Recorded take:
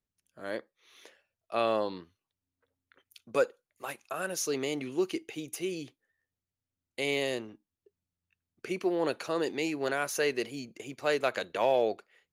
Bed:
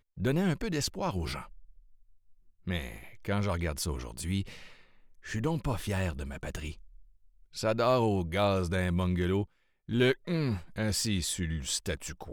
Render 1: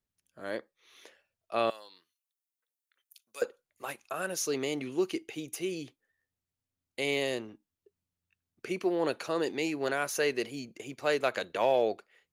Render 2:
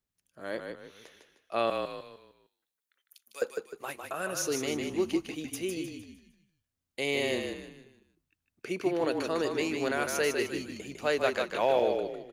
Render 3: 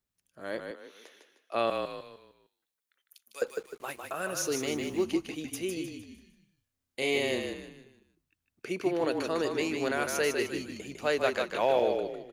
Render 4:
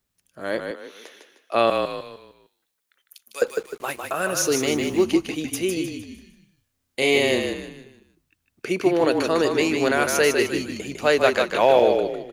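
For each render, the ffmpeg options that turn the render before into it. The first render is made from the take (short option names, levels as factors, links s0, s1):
-filter_complex "[0:a]asettb=1/sr,asplit=3[s0][s1][s2];[s0]atrim=end=1.704[s3];[s1]atrim=start=1.7:end=3.42,asetpts=PTS-STARTPTS,afade=t=in:d=0.004:c=qsin,afade=t=out:st=1.716:d=0.004:c=qsin,aderivative[s4];[s2]atrim=start=3.416[s5];[s3][s4]acrossfade=d=0.004:c1=hsin:c2=qsin[s6];[s6][s5]acrossfade=d=0.004:c1=qsin:c2=hsin"
-filter_complex "[0:a]asplit=6[s0][s1][s2][s3][s4][s5];[s1]adelay=153,afreqshift=-35,volume=0.562[s6];[s2]adelay=306,afreqshift=-70,volume=0.209[s7];[s3]adelay=459,afreqshift=-105,volume=0.0767[s8];[s4]adelay=612,afreqshift=-140,volume=0.0285[s9];[s5]adelay=765,afreqshift=-175,volume=0.0106[s10];[s0][s6][s7][s8][s9][s10]amix=inputs=6:normalize=0"
-filter_complex "[0:a]asettb=1/sr,asplit=3[s0][s1][s2];[s0]atrim=end=0.714[s3];[s1]atrim=start=0.71:end=1.55,asetpts=PTS-STARTPTS,afade=t=in:d=0.004:c=qsin,afade=t=out:st=0.836:d=0.004:c=qsin,highpass=f=240:w=0.5412,highpass=f=240:w=1.3066[s4];[s2]atrim=start=1.546[s5];[s3][s4]acrossfade=d=0.004:c1=hsin:c2=qsin[s6];[s6][s5]acrossfade=d=0.004:c1=qsin:c2=hsin,asettb=1/sr,asplit=3[s7][s8][s9];[s7]atrim=end=3.474[s10];[s8]atrim=start=3.47:end=5.03,asetpts=PTS-STARTPTS,afade=t=in:d=0.004:c=qsin,afade=t=out:st=1.556:d=0.004:c=qsin,acrusher=bits=8:mix=0:aa=0.5[s11];[s9]atrim=start=5.026[s12];[s10][s11]acrossfade=d=0.004:c1=hsin:c2=qsin[s13];[s13][s12]acrossfade=d=0.004:c1=qsin:c2=hsin,asettb=1/sr,asplit=3[s14][s15][s16];[s14]atrim=end=6.084[s17];[s15]atrim=start=6.08:end=7.18,asetpts=PTS-STARTPTS,afade=t=in:d=0.004:c=qsin,afade=t=out:st=1.096:d=0.004:c=qsin,asplit=2[s18][s19];[s19]adelay=31,volume=0.668[s20];[s18][s20]amix=inputs=2:normalize=0,atrim=end_sample=48510[s21];[s16]atrim=start=7.176[s22];[s17][s21]acrossfade=d=0.004:c1=hsin:c2=qsin[s23];[s23][s22]acrossfade=d=0.004:c1=qsin:c2=hsin"
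-af "volume=2.99"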